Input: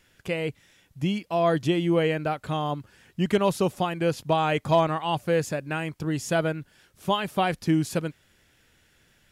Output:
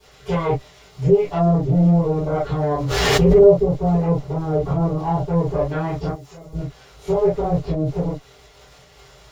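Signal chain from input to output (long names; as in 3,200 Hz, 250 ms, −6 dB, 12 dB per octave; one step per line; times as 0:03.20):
lower of the sound and its delayed copy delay 7.1 ms
treble cut that deepens with the level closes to 400 Hz, closed at −22 dBFS
surface crackle 320 per second −42 dBFS
brickwall limiter −24 dBFS, peak gain reduction 11 dB
0:06.08–0:06.53: first-order pre-emphasis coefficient 0.9
tape wow and flutter 19 cents
high-shelf EQ 7,000 Hz −9 dB
convolution reverb, pre-delay 3 ms, DRR −17.5 dB
0:02.71–0:03.51: background raised ahead of every attack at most 24 dB per second
level −7.5 dB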